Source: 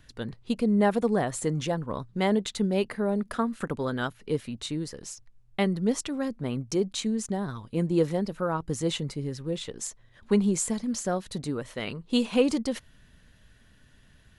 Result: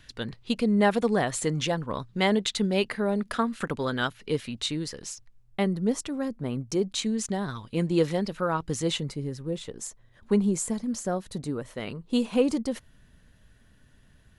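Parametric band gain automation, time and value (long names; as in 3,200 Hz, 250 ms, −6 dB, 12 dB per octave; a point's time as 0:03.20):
parametric band 3,300 Hz 2.5 octaves
0:04.91 +7 dB
0:05.61 −3 dB
0:06.59 −3 dB
0:07.26 +7 dB
0:08.67 +7 dB
0:09.37 −4.5 dB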